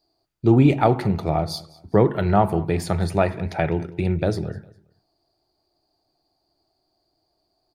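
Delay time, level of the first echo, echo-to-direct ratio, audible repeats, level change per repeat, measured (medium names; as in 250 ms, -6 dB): 203 ms, -22.0 dB, -21.5 dB, 2, -10.0 dB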